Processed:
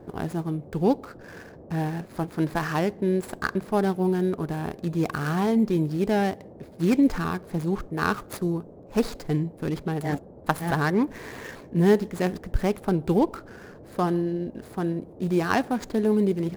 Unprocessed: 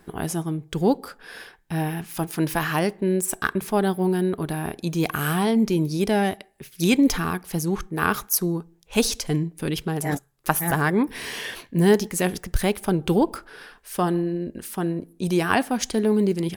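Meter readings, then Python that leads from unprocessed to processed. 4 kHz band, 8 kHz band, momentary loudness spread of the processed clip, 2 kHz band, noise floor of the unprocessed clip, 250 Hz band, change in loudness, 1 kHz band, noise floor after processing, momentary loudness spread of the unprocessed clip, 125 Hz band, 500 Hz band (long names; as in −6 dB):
−9.0 dB, −15.0 dB, 10 LU, −4.5 dB, −57 dBFS, −1.5 dB, −2.0 dB, −2.5 dB, −47 dBFS, 9 LU, −1.5 dB, −1.5 dB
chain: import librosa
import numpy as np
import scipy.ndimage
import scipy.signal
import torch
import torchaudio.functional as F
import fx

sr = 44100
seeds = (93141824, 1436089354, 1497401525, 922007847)

y = scipy.signal.medfilt(x, 15)
y = fx.dmg_noise_band(y, sr, seeds[0], low_hz=63.0, high_hz=580.0, level_db=-45.0)
y = y * 10.0 ** (-1.5 / 20.0)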